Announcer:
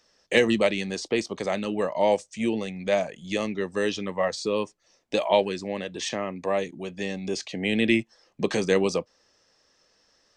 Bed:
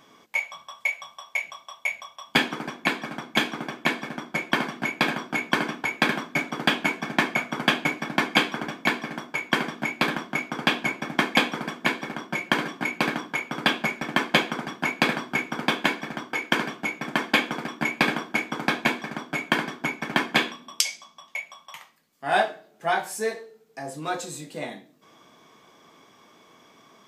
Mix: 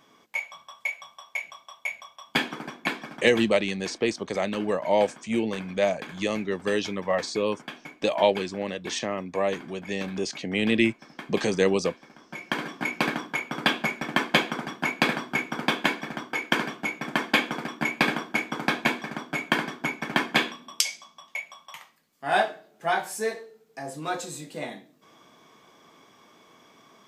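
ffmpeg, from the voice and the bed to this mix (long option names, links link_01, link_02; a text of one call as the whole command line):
ffmpeg -i stem1.wav -i stem2.wav -filter_complex "[0:a]adelay=2900,volume=0dB[link_01];[1:a]volume=13dB,afade=type=out:start_time=2.93:duration=0.56:silence=0.199526,afade=type=in:start_time=12.18:duration=0.7:silence=0.141254[link_02];[link_01][link_02]amix=inputs=2:normalize=0" out.wav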